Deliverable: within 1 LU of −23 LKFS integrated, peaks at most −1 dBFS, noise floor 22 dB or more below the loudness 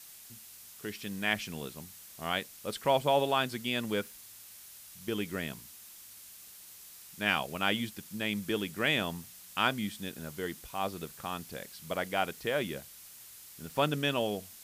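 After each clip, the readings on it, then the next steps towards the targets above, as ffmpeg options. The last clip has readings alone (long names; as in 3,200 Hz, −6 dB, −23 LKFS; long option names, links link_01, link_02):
background noise floor −52 dBFS; target noise floor −55 dBFS; integrated loudness −33.0 LKFS; sample peak −12.5 dBFS; target loudness −23.0 LKFS
→ -af "afftdn=noise_reduction=6:noise_floor=-52"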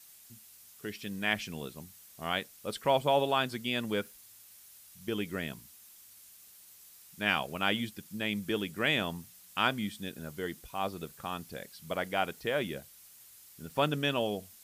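background noise floor −56 dBFS; integrated loudness −33.0 LKFS; sample peak −12.5 dBFS; target loudness −23.0 LKFS
→ -af "volume=10dB"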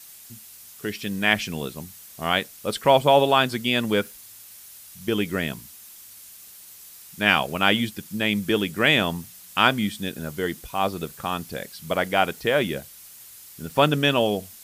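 integrated loudness −23.0 LKFS; sample peak −2.5 dBFS; background noise floor −46 dBFS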